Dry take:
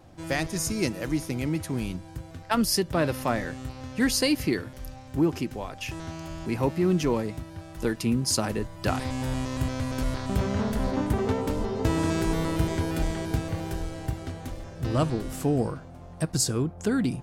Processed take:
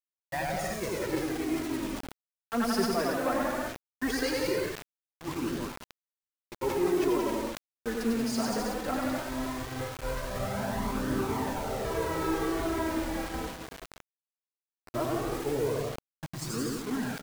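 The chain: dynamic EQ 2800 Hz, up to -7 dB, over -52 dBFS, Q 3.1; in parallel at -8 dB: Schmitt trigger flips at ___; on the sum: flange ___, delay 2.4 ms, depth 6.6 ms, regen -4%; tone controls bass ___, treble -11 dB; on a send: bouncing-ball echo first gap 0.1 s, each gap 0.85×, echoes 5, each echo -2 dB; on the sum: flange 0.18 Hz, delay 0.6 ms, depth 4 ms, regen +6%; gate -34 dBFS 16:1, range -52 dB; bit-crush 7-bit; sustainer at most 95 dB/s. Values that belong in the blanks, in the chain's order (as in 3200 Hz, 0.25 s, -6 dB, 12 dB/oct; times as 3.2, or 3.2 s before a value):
-37 dBFS, 1.5 Hz, -10 dB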